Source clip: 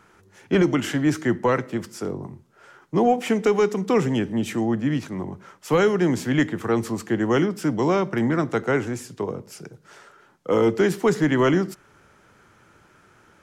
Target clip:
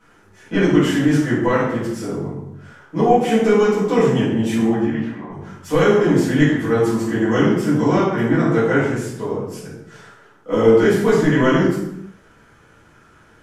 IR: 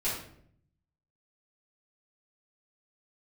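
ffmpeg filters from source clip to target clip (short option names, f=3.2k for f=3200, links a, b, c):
-filter_complex "[0:a]asettb=1/sr,asplit=3[a][b][c];[a]atrim=end=4.844[d];[b]atrim=start=4.84:end=5.3,asetpts=PTS-STARTPTS,afade=t=in:d=0.004:c=qsin,afade=t=out:st=0.456:d=0.004:c=qsin,acrossover=split=560 2800:gain=0.224 1 0.112[e][f][g];[e][f][g]amix=inputs=3:normalize=0[h];[c]atrim=start=5.296[i];[d][h]acrossfade=d=0.004:c1=hsin:c2=qsin[j];[j][i]acrossfade=d=0.004:c1=qsin:c2=hsin[k];[1:a]atrim=start_sample=2205,afade=t=out:st=0.39:d=0.01,atrim=end_sample=17640,asetrate=30429,aresample=44100[l];[k][l]afir=irnorm=-1:irlink=0,volume=-5.5dB"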